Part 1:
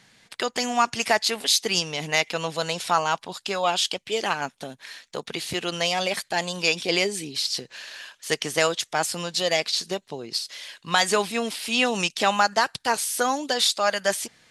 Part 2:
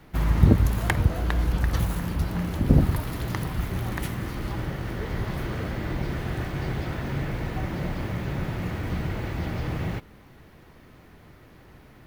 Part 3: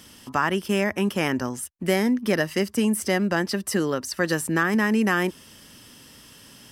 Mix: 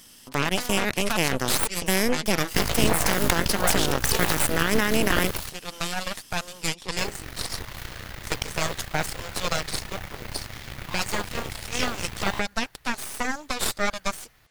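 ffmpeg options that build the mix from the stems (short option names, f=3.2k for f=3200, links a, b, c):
-filter_complex "[0:a]equalizer=f=720:t=o:w=2.5:g=11,volume=-14.5dB[a];[1:a]equalizer=f=250:w=0.54:g=-13.5,acrossover=split=160[b][c];[b]acompressor=threshold=-28dB:ratio=6[d];[d][c]amix=inputs=2:normalize=0,adelay=2400,volume=-1.5dB,asplit=3[e][f][g];[e]atrim=end=5.5,asetpts=PTS-STARTPTS,afade=t=out:st=5.496:d=0.004:c=hsin[h];[f]atrim=start=5.5:end=6.97,asetpts=PTS-STARTPTS,volume=0[i];[g]atrim=start=6.97,asetpts=PTS-STARTPTS,afade=t=in:d=0.004:c=hsin[j];[h][i][j]concat=n=3:v=0:a=1[k];[2:a]acontrast=50,volume=-9dB[l];[a][l]amix=inputs=2:normalize=0,alimiter=limit=-18.5dB:level=0:latency=1:release=84,volume=0dB[m];[k][m]amix=inputs=2:normalize=0,highshelf=f=3.1k:g=9.5,aeval=exprs='0.447*(cos(1*acos(clip(val(0)/0.447,-1,1)))-cos(1*PI/2))+0.0631*(cos(3*acos(clip(val(0)/0.447,-1,1)))-cos(3*PI/2))+0.2*(cos(6*acos(clip(val(0)/0.447,-1,1)))-cos(6*PI/2))':c=same"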